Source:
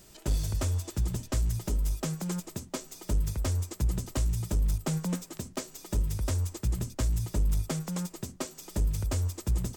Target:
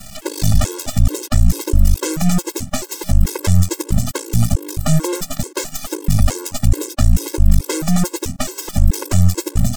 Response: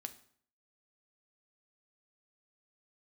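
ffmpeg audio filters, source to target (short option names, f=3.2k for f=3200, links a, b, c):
-af "aeval=exprs='max(val(0),0)':c=same,alimiter=level_in=26.5dB:limit=-1dB:release=50:level=0:latency=1,afftfilt=real='re*gt(sin(2*PI*2.3*pts/sr)*(1-2*mod(floor(b*sr/1024/280),2)),0)':imag='im*gt(sin(2*PI*2.3*pts/sr)*(1-2*mod(floor(b*sr/1024/280),2)),0)':win_size=1024:overlap=0.75,volume=-1dB"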